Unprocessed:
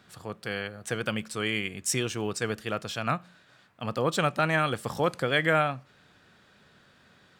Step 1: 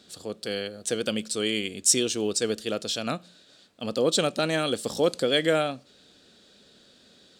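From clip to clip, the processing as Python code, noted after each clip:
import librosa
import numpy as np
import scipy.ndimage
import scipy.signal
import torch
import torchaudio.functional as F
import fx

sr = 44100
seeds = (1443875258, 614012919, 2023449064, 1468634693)

y = fx.graphic_eq(x, sr, hz=(125, 250, 500, 1000, 2000, 4000, 8000), db=(-9, 6, 6, -8, -6, 10, 8))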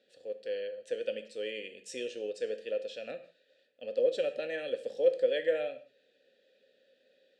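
y = fx.vowel_filter(x, sr, vowel='e')
y = fx.rev_gated(y, sr, seeds[0], gate_ms=200, shape='falling', drr_db=8.0)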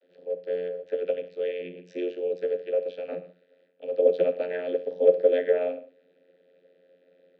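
y = scipy.ndimage.gaussian_filter1d(x, 2.1, mode='constant')
y = fx.vocoder(y, sr, bands=32, carrier='saw', carrier_hz=89.1)
y = y * librosa.db_to_amplitude(8.0)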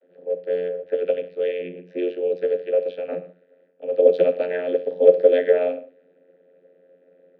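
y = fx.env_lowpass(x, sr, base_hz=1500.0, full_db=-17.5)
y = y * librosa.db_to_amplitude(5.5)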